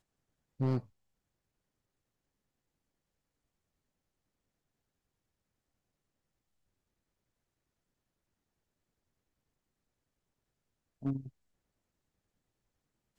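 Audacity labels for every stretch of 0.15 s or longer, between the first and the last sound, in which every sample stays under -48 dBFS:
0.800000	11.020000	silence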